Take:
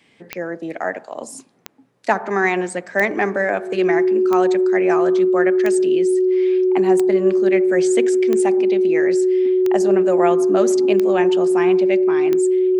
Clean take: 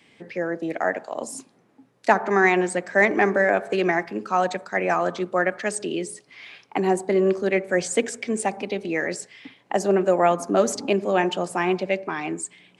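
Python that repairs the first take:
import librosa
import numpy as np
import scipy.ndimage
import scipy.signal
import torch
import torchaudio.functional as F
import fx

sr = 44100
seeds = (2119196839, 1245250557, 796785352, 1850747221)

y = fx.fix_declick_ar(x, sr, threshold=10.0)
y = fx.notch(y, sr, hz=370.0, q=30.0)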